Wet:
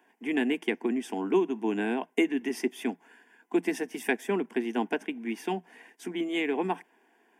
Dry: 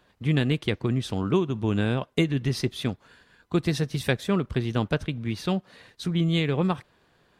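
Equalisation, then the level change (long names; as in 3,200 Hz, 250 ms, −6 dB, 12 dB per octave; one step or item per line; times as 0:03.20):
Chebyshev high-pass with heavy ripple 170 Hz, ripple 3 dB
phaser with its sweep stopped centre 830 Hz, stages 8
+3.5 dB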